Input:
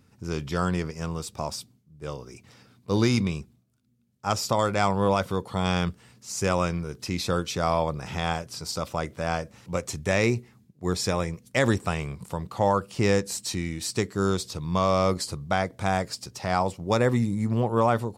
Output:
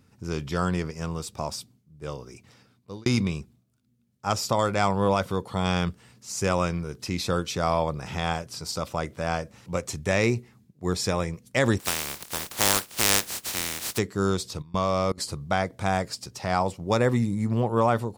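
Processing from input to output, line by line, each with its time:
2.12–3.06 s: fade out equal-power
11.79–13.97 s: spectral contrast reduction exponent 0.17
14.62–15.18 s: level held to a coarse grid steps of 24 dB

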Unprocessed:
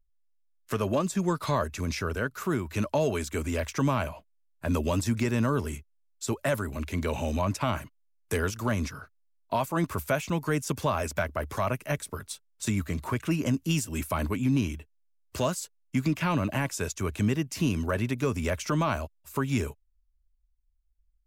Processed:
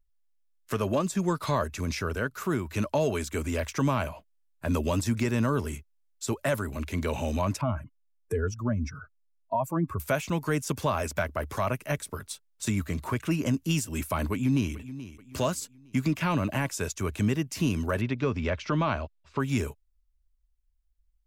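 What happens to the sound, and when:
7.61–10.00 s: spectral contrast enhancement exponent 1.9
14.32–14.74 s: echo throw 430 ms, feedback 40%, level -14.5 dB
18.01–19.40 s: low-pass 4.6 kHz 24 dB/octave

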